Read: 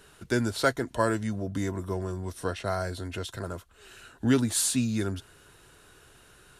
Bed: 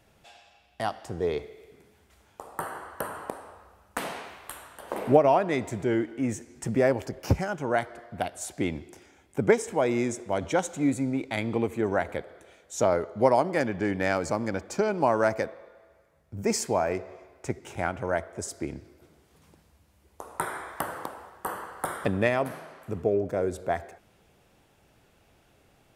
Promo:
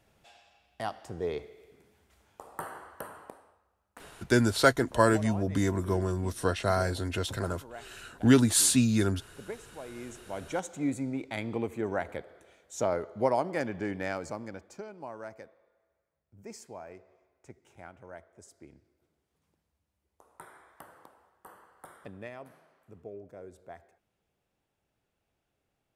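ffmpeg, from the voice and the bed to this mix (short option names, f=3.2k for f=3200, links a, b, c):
-filter_complex "[0:a]adelay=4000,volume=3dB[a];[1:a]volume=9dB,afade=t=out:st=2.64:d=0.97:silence=0.188365,afade=t=in:st=9.88:d=0.95:silence=0.199526,afade=t=out:st=13.76:d=1.14:silence=0.211349[b];[a][b]amix=inputs=2:normalize=0"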